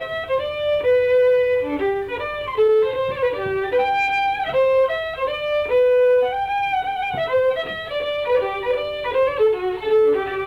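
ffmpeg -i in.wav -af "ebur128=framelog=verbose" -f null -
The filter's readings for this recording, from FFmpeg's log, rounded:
Integrated loudness:
  I:         -19.8 LUFS
  Threshold: -29.8 LUFS
Loudness range:
  LRA:         2.2 LU
  Threshold: -39.9 LUFS
  LRA low:   -21.2 LUFS
  LRA high:  -19.0 LUFS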